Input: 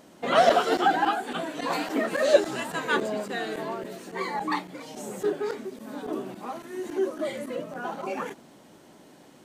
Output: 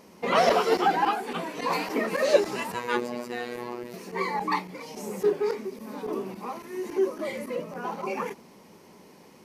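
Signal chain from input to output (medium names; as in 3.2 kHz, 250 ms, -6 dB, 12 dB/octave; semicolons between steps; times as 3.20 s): rippled EQ curve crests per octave 0.84, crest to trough 8 dB; 2.74–3.94 s: robot voice 121 Hz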